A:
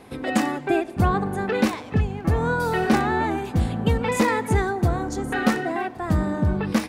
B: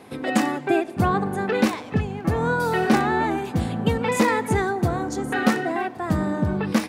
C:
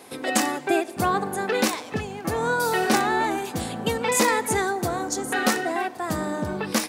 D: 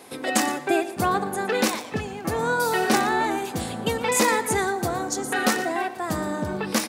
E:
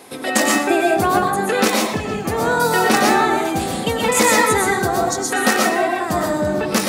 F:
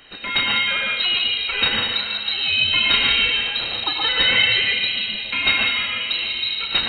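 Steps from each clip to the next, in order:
high-pass filter 110 Hz 12 dB per octave; level +1 dB
bass and treble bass −10 dB, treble +10 dB
single-tap delay 117 ms −15 dB
convolution reverb RT60 0.40 s, pre-delay 85 ms, DRR −1 dB; level +4 dB
elliptic band-stop filter 240–900 Hz, stop band 50 dB; spring reverb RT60 2.4 s, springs 32 ms, chirp 20 ms, DRR 6 dB; voice inversion scrambler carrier 4,000 Hz

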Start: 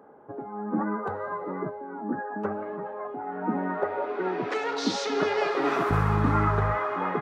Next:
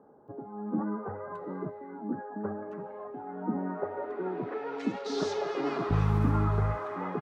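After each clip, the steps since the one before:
low-shelf EQ 360 Hz +8.5 dB
multiband delay without the direct sound lows, highs 280 ms, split 1,800 Hz
level −8.5 dB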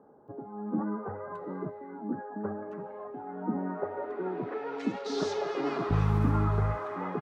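no processing that can be heard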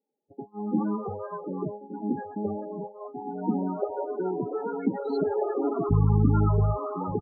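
single-tap delay 1,167 ms −15 dB
noise gate −40 dBFS, range −32 dB
spectral peaks only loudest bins 16
level +5 dB

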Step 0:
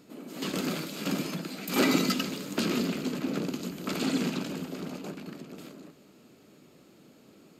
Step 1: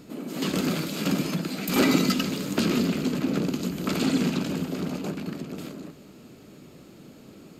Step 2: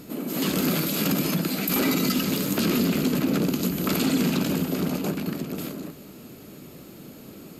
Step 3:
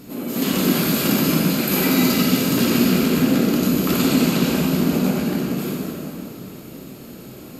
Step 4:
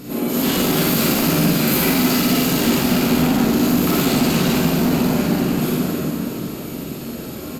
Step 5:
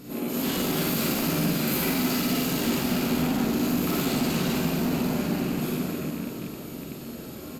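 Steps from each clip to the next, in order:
low-shelf EQ 120 Hz +12 dB; in parallel at +0.5 dB: downward compressor, threshold −33 dBFS, peak gain reduction 15 dB
parametric band 12,000 Hz +13 dB 0.52 octaves; brickwall limiter −18 dBFS, peak gain reduction 10 dB; level +4 dB
dense smooth reverb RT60 2.9 s, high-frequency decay 0.75×, DRR −4.5 dB
in parallel at −1 dB: downward compressor, threshold −27 dBFS, peak gain reduction 14 dB; on the sum: hard clipping −17 dBFS, distortion −9 dB; ambience of single reflections 44 ms −3 dB, 57 ms −3.5 dB
loose part that buzzes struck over −25 dBFS, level −26 dBFS; level −8.5 dB

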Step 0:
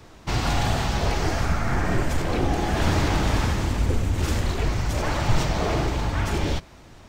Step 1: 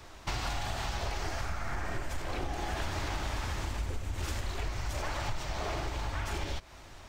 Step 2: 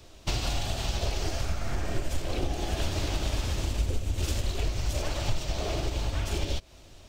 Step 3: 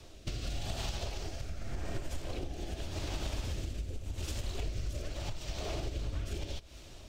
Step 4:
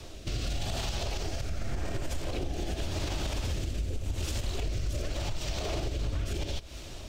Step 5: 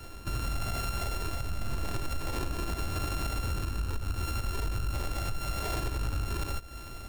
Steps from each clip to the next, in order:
parametric band 190 Hz −10 dB 2 octaves; notch filter 470 Hz, Q 12; downward compressor 6 to 1, threshold −31 dBFS, peak gain reduction 15 dB
flat-topped bell 1,300 Hz −9 dB; expander for the loud parts 1.5 to 1, over −46 dBFS; level +8.5 dB
downward compressor 6 to 1, threshold −34 dBFS, peak gain reduction 12.5 dB; rotating-speaker cabinet horn 0.85 Hz; on a send at −19.5 dB: convolution reverb RT60 4.0 s, pre-delay 68 ms; on the sum: level +2 dB
brickwall limiter −31.5 dBFS, peak gain reduction 7.5 dB; level +8 dB
samples sorted by size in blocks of 32 samples

